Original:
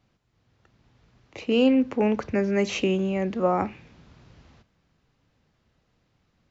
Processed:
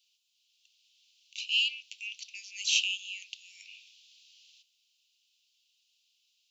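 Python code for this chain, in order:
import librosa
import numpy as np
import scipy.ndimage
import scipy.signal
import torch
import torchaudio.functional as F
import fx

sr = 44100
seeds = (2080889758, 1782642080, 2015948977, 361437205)

y = scipy.signal.sosfilt(scipy.signal.butter(12, 2700.0, 'highpass', fs=sr, output='sos'), x)
y = F.gain(torch.from_numpy(y), 8.0).numpy()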